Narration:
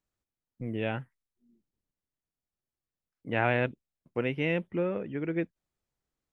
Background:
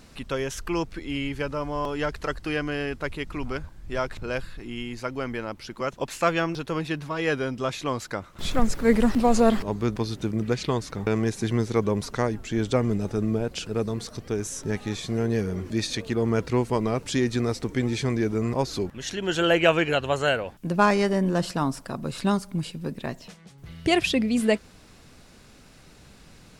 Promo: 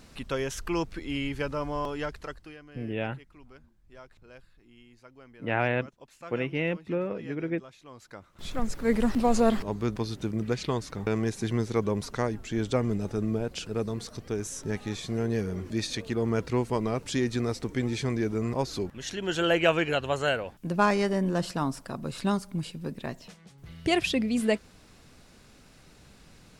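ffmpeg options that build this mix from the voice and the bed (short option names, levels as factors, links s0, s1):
-filter_complex "[0:a]adelay=2150,volume=1[s0];[1:a]volume=6.31,afade=t=out:st=1.71:d=0.86:silence=0.105925,afade=t=in:st=7.88:d=1.33:silence=0.125893[s1];[s0][s1]amix=inputs=2:normalize=0"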